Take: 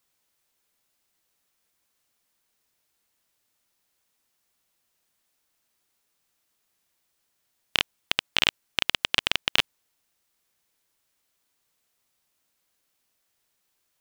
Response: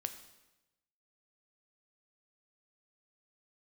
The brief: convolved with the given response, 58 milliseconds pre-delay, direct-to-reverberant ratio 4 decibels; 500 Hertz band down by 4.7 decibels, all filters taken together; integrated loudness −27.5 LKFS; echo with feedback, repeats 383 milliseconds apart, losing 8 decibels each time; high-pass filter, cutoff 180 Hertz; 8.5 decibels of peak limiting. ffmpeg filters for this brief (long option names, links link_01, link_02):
-filter_complex "[0:a]highpass=180,equalizer=frequency=500:width_type=o:gain=-6,alimiter=limit=-10.5dB:level=0:latency=1,aecho=1:1:383|766|1149|1532|1915:0.398|0.159|0.0637|0.0255|0.0102,asplit=2[link_01][link_02];[1:a]atrim=start_sample=2205,adelay=58[link_03];[link_02][link_03]afir=irnorm=-1:irlink=0,volume=-3dB[link_04];[link_01][link_04]amix=inputs=2:normalize=0,volume=5.5dB"